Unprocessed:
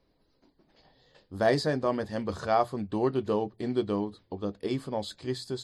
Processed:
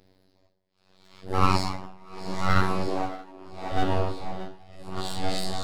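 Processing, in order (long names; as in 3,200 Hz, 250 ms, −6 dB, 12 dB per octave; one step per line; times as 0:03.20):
random phases in long frames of 200 ms
in parallel at −1.5 dB: downward compressor, threshold −35 dBFS, peak gain reduction 14.5 dB
on the sum: parametric band 1,100 Hz −13 dB 0.27 octaves
on a send at −15 dB: convolution reverb RT60 0.80 s, pre-delay 86 ms
on the sum: phases set to zero 94.1 Hz
full-wave rectification
0:02.87–0:03.72: low shelf with overshoot 210 Hz −12 dB, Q 3
echo with a time of its own for lows and highs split 520 Hz, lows 483 ms, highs 631 ms, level −8 dB
amplitude tremolo 0.75 Hz, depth 95%
level +7 dB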